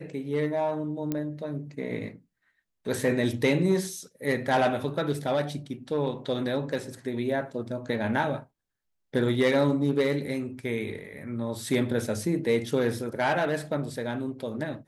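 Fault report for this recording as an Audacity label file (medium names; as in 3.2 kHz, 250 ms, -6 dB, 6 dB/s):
1.120000	1.120000	pop -16 dBFS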